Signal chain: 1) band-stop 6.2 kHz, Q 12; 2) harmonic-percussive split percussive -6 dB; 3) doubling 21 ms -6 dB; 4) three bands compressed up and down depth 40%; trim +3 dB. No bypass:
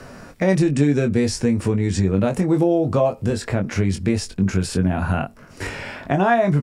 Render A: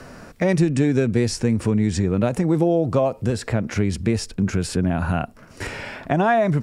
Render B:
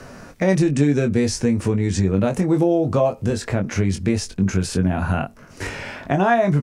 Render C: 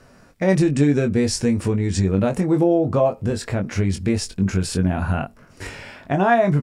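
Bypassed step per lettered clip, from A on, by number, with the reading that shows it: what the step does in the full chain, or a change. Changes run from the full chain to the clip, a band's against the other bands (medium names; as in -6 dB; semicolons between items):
3, loudness change -1.0 LU; 1, 8 kHz band +1.5 dB; 4, momentary loudness spread change +1 LU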